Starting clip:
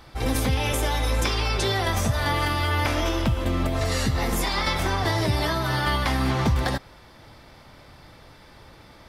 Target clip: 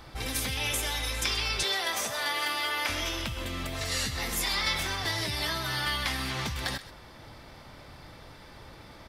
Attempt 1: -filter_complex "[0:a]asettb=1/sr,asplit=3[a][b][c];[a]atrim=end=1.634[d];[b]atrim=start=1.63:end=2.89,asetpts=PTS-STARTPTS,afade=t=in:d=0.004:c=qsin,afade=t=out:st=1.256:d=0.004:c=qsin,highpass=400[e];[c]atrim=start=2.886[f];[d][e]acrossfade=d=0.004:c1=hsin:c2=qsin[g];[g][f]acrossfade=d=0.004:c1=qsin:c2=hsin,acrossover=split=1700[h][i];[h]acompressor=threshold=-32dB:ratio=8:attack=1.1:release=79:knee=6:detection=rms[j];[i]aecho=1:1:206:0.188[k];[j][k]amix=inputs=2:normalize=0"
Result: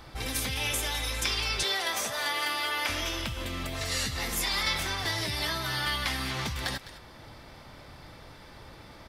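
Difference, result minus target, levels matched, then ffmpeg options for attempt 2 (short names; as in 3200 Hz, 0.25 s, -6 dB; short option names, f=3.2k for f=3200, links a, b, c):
echo 77 ms late
-filter_complex "[0:a]asettb=1/sr,asplit=3[a][b][c];[a]atrim=end=1.634[d];[b]atrim=start=1.63:end=2.89,asetpts=PTS-STARTPTS,afade=t=in:d=0.004:c=qsin,afade=t=out:st=1.256:d=0.004:c=qsin,highpass=400[e];[c]atrim=start=2.886[f];[d][e]acrossfade=d=0.004:c1=hsin:c2=qsin[g];[g][f]acrossfade=d=0.004:c1=qsin:c2=hsin,acrossover=split=1700[h][i];[h]acompressor=threshold=-32dB:ratio=8:attack=1.1:release=79:knee=6:detection=rms[j];[i]aecho=1:1:129:0.188[k];[j][k]amix=inputs=2:normalize=0"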